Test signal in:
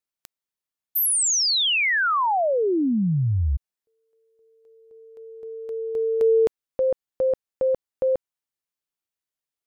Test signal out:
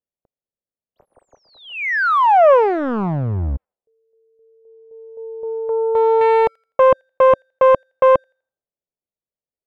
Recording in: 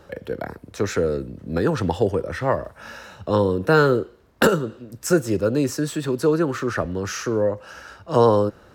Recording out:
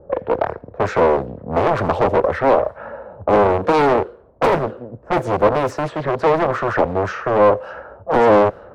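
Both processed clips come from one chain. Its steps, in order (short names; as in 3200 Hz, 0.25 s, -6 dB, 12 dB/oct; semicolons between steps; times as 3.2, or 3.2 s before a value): overloaded stage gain 21.5 dB; EQ curve 320 Hz 0 dB, 550 Hz +12 dB, 6400 Hz -11 dB; low-pass opened by the level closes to 340 Hz, open at -17 dBFS; on a send: thin delay 83 ms, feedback 31%, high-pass 2400 Hz, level -19 dB; on the sum: Doppler distortion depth 0.83 ms; gain +3.5 dB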